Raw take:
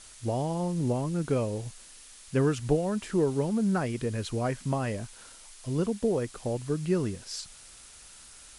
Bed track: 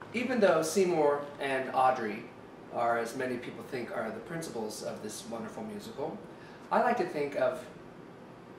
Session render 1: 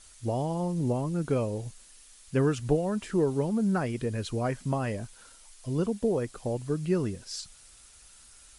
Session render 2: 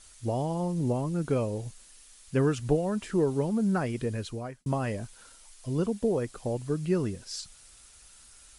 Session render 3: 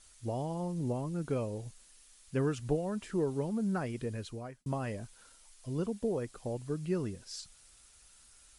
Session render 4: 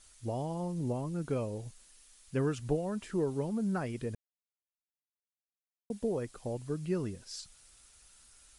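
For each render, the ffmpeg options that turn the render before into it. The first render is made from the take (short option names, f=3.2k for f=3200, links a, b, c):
-af "afftdn=nr=6:nf=-51"
-filter_complex "[0:a]asplit=2[a][b];[a]atrim=end=4.66,asetpts=PTS-STARTPTS,afade=t=out:st=4.11:d=0.55[c];[b]atrim=start=4.66,asetpts=PTS-STARTPTS,afade=t=in:d=0.004:c=hsin[d];[c][d]concat=n=2:v=0:a=1"
-af "volume=-6dB"
-filter_complex "[0:a]asplit=3[a][b][c];[a]atrim=end=4.15,asetpts=PTS-STARTPTS,afade=t=out:st=4.146:d=0.004:c=hsin[d];[b]atrim=start=4.15:end=5.9,asetpts=PTS-STARTPTS,volume=0[e];[c]atrim=start=5.9,asetpts=PTS-STARTPTS,afade=t=in:d=0.004:c=hsin[f];[d][e][f]concat=n=3:v=0:a=1"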